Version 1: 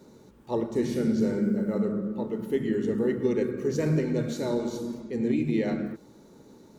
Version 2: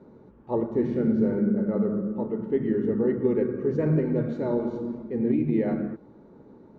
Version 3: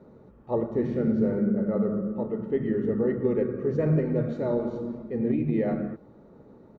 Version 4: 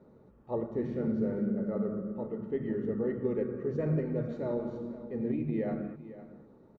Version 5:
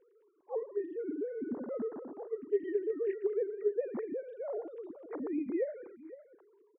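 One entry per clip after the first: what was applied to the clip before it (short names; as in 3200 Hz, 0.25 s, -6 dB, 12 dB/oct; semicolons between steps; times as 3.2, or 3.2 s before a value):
LPF 1400 Hz 12 dB/oct; gain +2 dB
comb 1.6 ms, depth 30%
echo 0.507 s -15 dB; gain -6.5 dB
sine-wave speech; gain -3.5 dB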